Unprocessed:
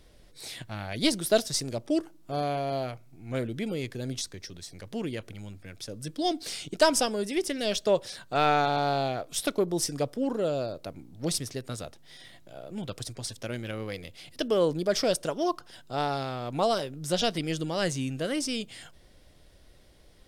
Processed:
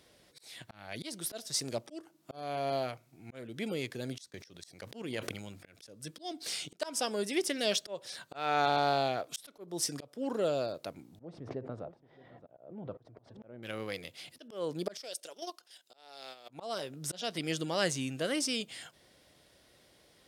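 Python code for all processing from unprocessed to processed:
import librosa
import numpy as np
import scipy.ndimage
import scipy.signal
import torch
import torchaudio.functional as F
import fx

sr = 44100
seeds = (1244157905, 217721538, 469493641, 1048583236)

y = fx.chain(x, sr, fx.transient(attack_db=11, sustain_db=-8),
    fx.sustainer(db_per_s=36.0), at=(4.3, 5.87))
y = fx.chain(y, sr, fx.cheby1_lowpass(hz=750.0, order=2),
    fx.echo_single(ms=622, db=-21.5),
    fx.pre_swell(db_per_s=29.0), at=(11.19, 13.63))
y = fx.chain(y, sr, fx.highpass(hz=620.0, slope=12),
    fx.peak_eq(hz=1100.0, db=-12.5, octaves=1.6),
    fx.level_steps(step_db=9), at=(14.97, 16.49))
y = scipy.signal.sosfilt(scipy.signal.butter(2, 110.0, 'highpass', fs=sr, output='sos'), y)
y = fx.low_shelf(y, sr, hz=400.0, db=-6.0)
y = fx.auto_swell(y, sr, attack_ms=352.0)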